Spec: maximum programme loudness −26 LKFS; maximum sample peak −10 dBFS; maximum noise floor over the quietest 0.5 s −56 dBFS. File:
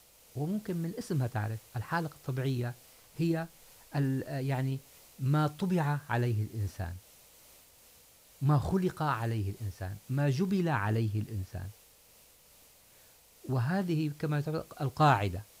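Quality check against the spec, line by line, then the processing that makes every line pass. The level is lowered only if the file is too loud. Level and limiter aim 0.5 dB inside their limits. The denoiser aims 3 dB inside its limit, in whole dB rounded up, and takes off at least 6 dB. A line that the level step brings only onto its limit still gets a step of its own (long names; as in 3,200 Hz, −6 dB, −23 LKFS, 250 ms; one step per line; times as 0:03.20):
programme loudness −32.5 LKFS: in spec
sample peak −14.5 dBFS: in spec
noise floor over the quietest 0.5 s −60 dBFS: in spec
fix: no processing needed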